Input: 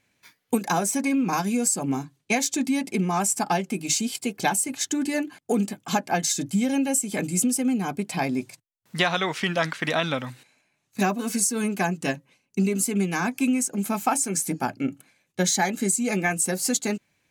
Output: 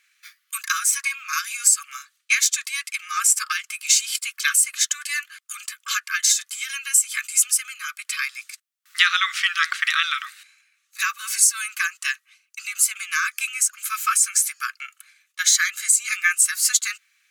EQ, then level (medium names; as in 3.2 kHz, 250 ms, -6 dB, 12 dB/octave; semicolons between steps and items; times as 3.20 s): brick-wall FIR high-pass 1.1 kHz; +7.5 dB